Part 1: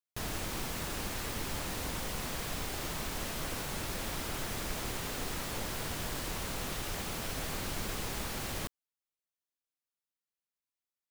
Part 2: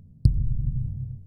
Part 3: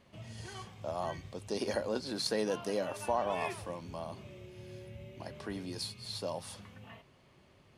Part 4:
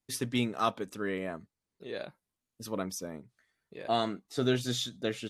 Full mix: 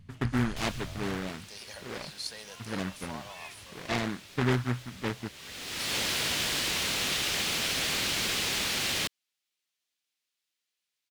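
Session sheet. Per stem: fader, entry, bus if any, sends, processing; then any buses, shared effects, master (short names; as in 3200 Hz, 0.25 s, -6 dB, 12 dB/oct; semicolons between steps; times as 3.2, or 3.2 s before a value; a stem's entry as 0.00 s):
+3.0 dB, 0.40 s, no send, weighting filter D; auto duck -21 dB, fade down 1.00 s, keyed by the fourth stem
-7.5 dB, 0.00 s, no send, compressor, threshold -31 dBFS, peak gain reduction 19 dB
-0.5 dB, 0.00 s, no send, passive tone stack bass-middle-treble 10-0-10
-5.0 dB, 0.00 s, no send, steep low-pass 2400 Hz; tilt -3 dB/oct; noise-modulated delay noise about 1300 Hz, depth 0.27 ms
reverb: off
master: low shelf 210 Hz +3 dB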